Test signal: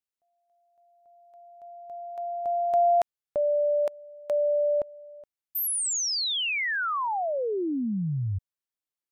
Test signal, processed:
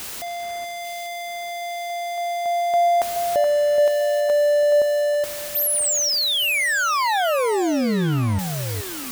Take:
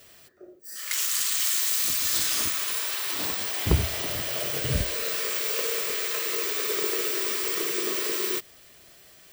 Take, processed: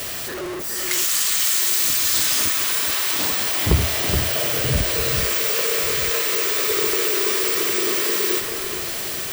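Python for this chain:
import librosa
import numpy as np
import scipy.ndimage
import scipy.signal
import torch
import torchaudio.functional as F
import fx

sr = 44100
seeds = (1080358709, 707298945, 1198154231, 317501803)

y = x + 0.5 * 10.0 ** (-26.5 / 20.0) * np.sign(x)
y = fx.echo_alternate(y, sr, ms=424, hz=2200.0, feedback_pct=61, wet_db=-6.5)
y = F.gain(torch.from_numpy(y), 3.0).numpy()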